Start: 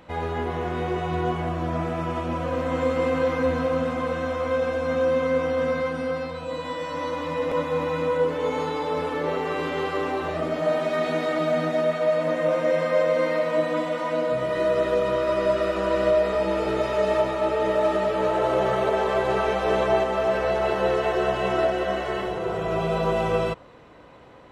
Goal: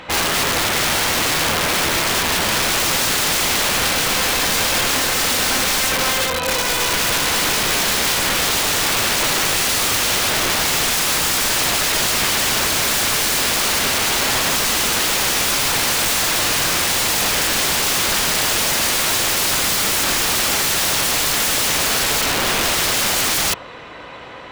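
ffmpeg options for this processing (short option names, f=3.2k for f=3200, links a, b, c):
-af "equalizer=f=2.9k:w=0.33:g=12.5,aeval=exprs='(mod(11.2*val(0)+1,2)-1)/11.2':c=same,volume=7.5dB"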